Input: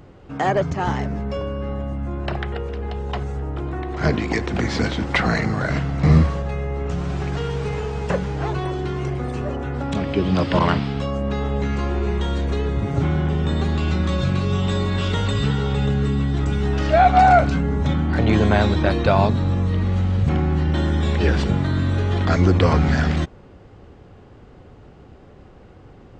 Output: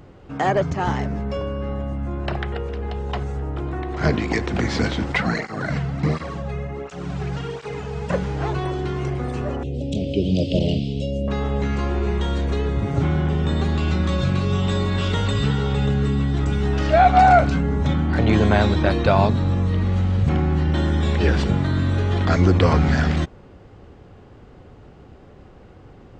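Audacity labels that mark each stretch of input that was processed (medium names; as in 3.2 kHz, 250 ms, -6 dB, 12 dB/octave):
5.120000	8.130000	cancelling through-zero flanger nulls at 1.4 Hz, depth 3.8 ms
9.630000	11.280000	elliptic band-stop 590–2800 Hz, stop band 50 dB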